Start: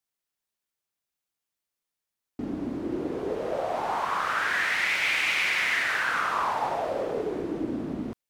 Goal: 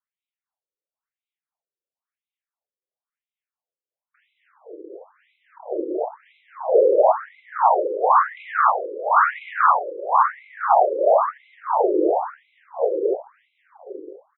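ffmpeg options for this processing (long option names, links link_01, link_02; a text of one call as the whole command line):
ffmpeg -i in.wav -filter_complex "[0:a]afwtdn=0.0224,lowshelf=frequency=520:width_type=q:width=1.5:gain=-8,bandreject=frequency=500:width=14,acrossover=split=300|600|2000[link_01][link_02][link_03][link_04];[link_03]crystalizer=i=10:c=0[link_05];[link_04]acompressor=threshold=-47dB:ratio=5[link_06];[link_01][link_02][link_05][link_06]amix=inputs=4:normalize=0,tremolo=f=6.6:d=0.48,asetrate=25442,aresample=44100,asplit=2[link_07][link_08];[link_08]adelay=1283,volume=-7dB,highshelf=frequency=4000:gain=-28.9[link_09];[link_07][link_09]amix=inputs=2:normalize=0,alimiter=level_in=18.5dB:limit=-1dB:release=50:level=0:latency=1,afftfilt=real='re*between(b*sr/1024,390*pow(2900/390,0.5+0.5*sin(2*PI*0.98*pts/sr))/1.41,390*pow(2900/390,0.5+0.5*sin(2*PI*0.98*pts/sr))*1.41)':imag='im*between(b*sr/1024,390*pow(2900/390,0.5+0.5*sin(2*PI*0.98*pts/sr))/1.41,390*pow(2900/390,0.5+0.5*sin(2*PI*0.98*pts/sr))*1.41)':win_size=1024:overlap=0.75,volume=-4dB" out.wav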